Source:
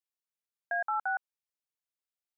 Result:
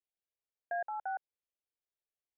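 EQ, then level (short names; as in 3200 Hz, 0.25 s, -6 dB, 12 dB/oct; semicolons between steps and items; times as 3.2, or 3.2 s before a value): air absorption 420 m; fixed phaser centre 500 Hz, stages 4; +2.5 dB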